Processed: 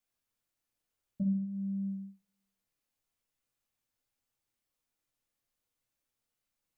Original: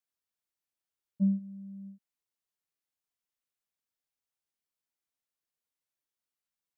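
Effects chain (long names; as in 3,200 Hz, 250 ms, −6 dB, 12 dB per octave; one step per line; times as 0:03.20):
low-shelf EQ 430 Hz +5 dB
downward compressor 6 to 1, threshold −35 dBFS, peak gain reduction 15 dB
convolution reverb RT60 0.45 s, pre-delay 3 ms, DRR 0.5 dB
level +1.5 dB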